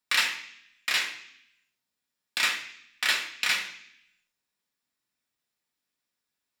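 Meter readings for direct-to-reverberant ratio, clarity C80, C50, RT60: 0.0 dB, 11.5 dB, 8.5 dB, 0.65 s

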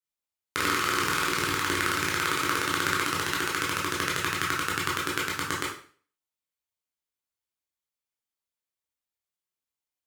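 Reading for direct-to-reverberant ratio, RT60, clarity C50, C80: −5.0 dB, 0.45 s, 4.5 dB, 9.5 dB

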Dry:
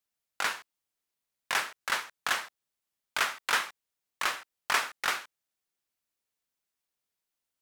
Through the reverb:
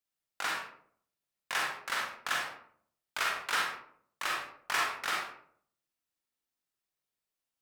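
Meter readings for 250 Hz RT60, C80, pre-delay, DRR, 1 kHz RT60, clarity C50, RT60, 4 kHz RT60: 0.75 s, 6.5 dB, 36 ms, −1.5 dB, 0.55 s, 2.5 dB, 0.60 s, 0.35 s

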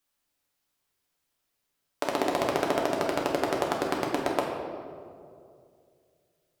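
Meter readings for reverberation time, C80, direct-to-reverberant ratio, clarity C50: 2.4 s, 4.0 dB, −1.5 dB, 2.5 dB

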